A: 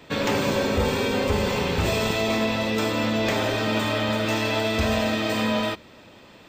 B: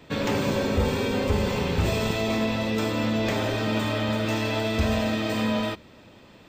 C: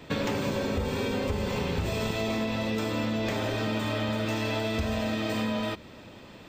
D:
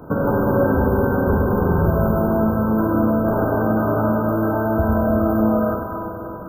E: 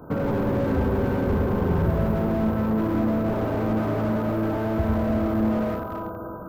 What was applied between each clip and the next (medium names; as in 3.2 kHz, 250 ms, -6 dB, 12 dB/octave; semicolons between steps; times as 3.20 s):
bass shelf 300 Hz +6 dB; trim -4 dB
compression, threshold -29 dBFS, peak gain reduction 11 dB; trim +3 dB
Schroeder reverb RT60 3.3 s, combs from 33 ms, DRR -1 dB; FFT band-reject 1.6–11 kHz; trim +9 dB
slew-rate limiter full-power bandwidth 55 Hz; trim -4 dB